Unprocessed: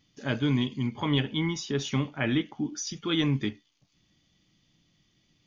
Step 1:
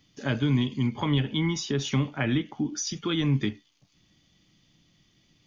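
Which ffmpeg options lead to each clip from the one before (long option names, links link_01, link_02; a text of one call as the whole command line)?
ffmpeg -i in.wav -filter_complex "[0:a]acrossover=split=200[link_01][link_02];[link_02]acompressor=threshold=-30dB:ratio=6[link_03];[link_01][link_03]amix=inputs=2:normalize=0,volume=4dB" out.wav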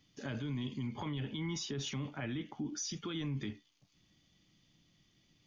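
ffmpeg -i in.wav -af "alimiter=level_in=1dB:limit=-24dB:level=0:latency=1:release=19,volume=-1dB,volume=-6dB" out.wav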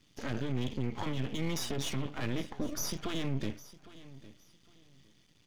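ffmpeg -i in.wav -af "aeval=exprs='max(val(0),0)':channel_layout=same,aecho=1:1:808|1616:0.126|0.0302,volume=8dB" out.wav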